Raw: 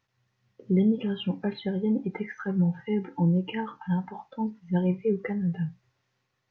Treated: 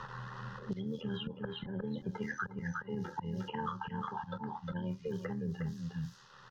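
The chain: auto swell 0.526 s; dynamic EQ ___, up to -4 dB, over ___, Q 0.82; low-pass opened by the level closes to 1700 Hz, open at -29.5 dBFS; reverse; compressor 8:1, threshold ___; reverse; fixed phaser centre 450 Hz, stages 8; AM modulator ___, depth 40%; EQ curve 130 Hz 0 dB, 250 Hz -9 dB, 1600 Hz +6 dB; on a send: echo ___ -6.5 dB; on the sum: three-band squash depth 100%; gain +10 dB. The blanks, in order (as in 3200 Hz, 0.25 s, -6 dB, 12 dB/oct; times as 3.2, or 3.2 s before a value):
1800 Hz, -53 dBFS, -38 dBFS, 79 Hz, 0.358 s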